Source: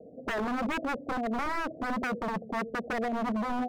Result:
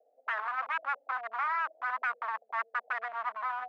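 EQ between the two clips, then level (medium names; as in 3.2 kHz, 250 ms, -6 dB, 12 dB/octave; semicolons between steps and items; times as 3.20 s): high-pass 1.1 kHz 24 dB/octave; low-pass 1.4 kHz 12 dB/octave; +7.5 dB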